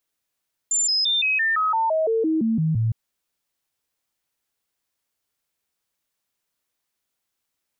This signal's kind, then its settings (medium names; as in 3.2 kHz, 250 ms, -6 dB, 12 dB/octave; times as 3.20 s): stepped sine 7.19 kHz down, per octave 2, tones 13, 0.17 s, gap 0.00 s -18 dBFS